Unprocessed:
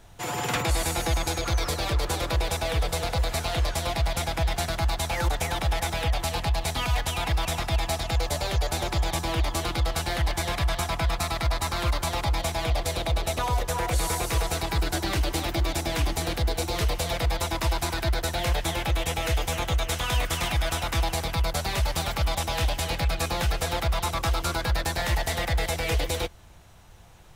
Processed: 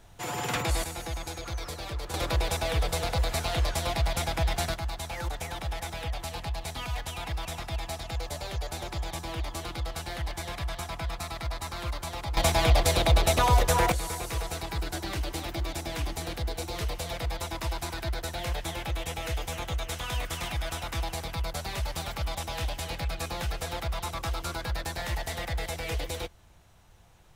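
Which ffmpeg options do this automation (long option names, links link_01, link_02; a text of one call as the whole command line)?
ffmpeg -i in.wav -af "asetnsamples=nb_out_samples=441:pad=0,asendcmd='0.84 volume volume -9.5dB;2.14 volume volume -1.5dB;4.74 volume volume -8dB;12.37 volume volume 4.5dB;13.92 volume volume -6.5dB',volume=-3dB" out.wav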